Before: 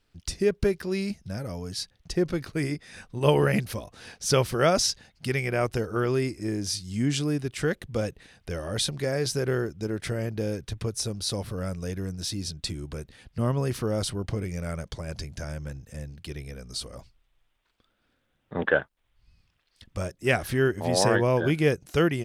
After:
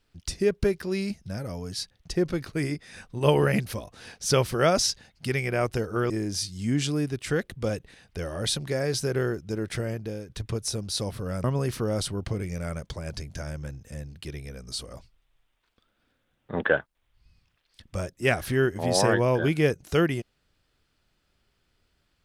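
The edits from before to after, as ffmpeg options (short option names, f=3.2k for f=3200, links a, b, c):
-filter_complex "[0:a]asplit=4[a][b][c][d];[a]atrim=end=6.102[e];[b]atrim=start=6.418:end=10.61,asetpts=PTS-STARTPTS,afade=t=out:st=3.722:d=0.47:silence=0.298538[f];[c]atrim=start=10.61:end=11.762,asetpts=PTS-STARTPTS,afade=t=in:d=0.004:c=hsin:silence=0.298538[g];[d]atrim=start=13.458[h];[f][g]concat=n=2:v=0:a=1[i];[e][i]acrossfade=d=0.004:c1=hsin:c2=hsin[j];[j][h]acrossfade=d=0.004:c1=hsin:c2=hsin"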